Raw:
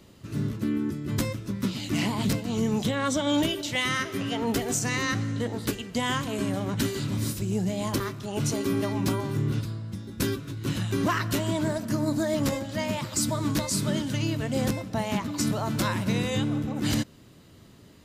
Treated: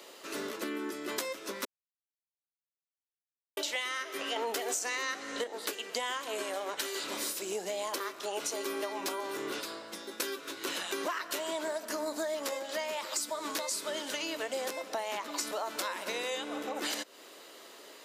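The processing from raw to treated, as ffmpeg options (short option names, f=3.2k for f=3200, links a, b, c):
-filter_complex "[0:a]asettb=1/sr,asplit=3[a][b][c];[a]atrim=end=4.364[d];[b]atrim=start=4.36:end=5.44,asetpts=PTS-STARTPTS,afade=t=in:d=0.004:c=qsin,afade=t=out:st=1.076:d=0.004:c=qsin,acontrast=71[e];[c]atrim=start=5.436[f];[d][e]acrossfade=d=0.004:c1=hsin:c2=qsin[g];[g][f]acrossfade=d=0.004:c1=qsin:c2=hsin,asettb=1/sr,asplit=3[h][i][j];[h]atrim=end=6.424[k];[i]atrim=start=6.42:end=7.04,asetpts=PTS-STARTPTS,afade=t=in:d=0.004:c=qsin,afade=t=out:st=0.616:d=0.004:c=qsin,equalizer=f=220:w=1.6:g=-7[l];[j]atrim=start=7.036[m];[k][l]acrossfade=d=0.004:c1=hsin:c2=qsin[n];[n][m]acrossfade=d=0.004:c1=qsin:c2=hsin,asplit=3[o][p][q];[o]atrim=end=1.65,asetpts=PTS-STARTPTS,afade=t=out:st=1.646:d=0.004:c=hsin[r];[p]atrim=start=1.65:end=3.57,asetpts=PTS-STARTPTS,volume=0[s];[q]atrim=start=3.57,asetpts=PTS-STARTPTS,afade=t=in:d=0.004:c=hsin[t];[r][s][t]concat=n=3:v=0:a=1,highpass=f=430:w=0.5412,highpass=f=430:w=1.3066,acompressor=threshold=-41dB:ratio=6,volume=8dB"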